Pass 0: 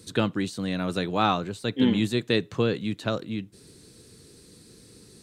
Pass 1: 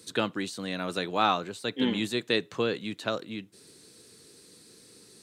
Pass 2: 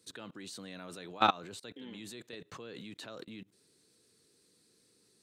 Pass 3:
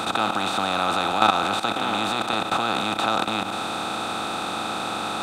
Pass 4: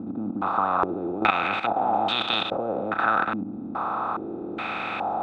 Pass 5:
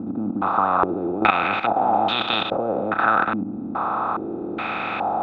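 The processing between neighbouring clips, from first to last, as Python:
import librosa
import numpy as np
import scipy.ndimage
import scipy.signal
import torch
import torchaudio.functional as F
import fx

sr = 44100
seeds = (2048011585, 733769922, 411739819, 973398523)

y1 = fx.highpass(x, sr, hz=430.0, slope=6)
y2 = fx.level_steps(y1, sr, step_db=23)
y3 = fx.bin_compress(y2, sr, power=0.2)
y3 = y3 * 10.0 ** (5.5 / 20.0)
y4 = fx.filter_held_lowpass(y3, sr, hz=2.4, low_hz=260.0, high_hz=3300.0)
y4 = y4 * 10.0 ** (-4.5 / 20.0)
y5 = fx.air_absorb(y4, sr, metres=130.0)
y5 = y5 * 10.0 ** (4.5 / 20.0)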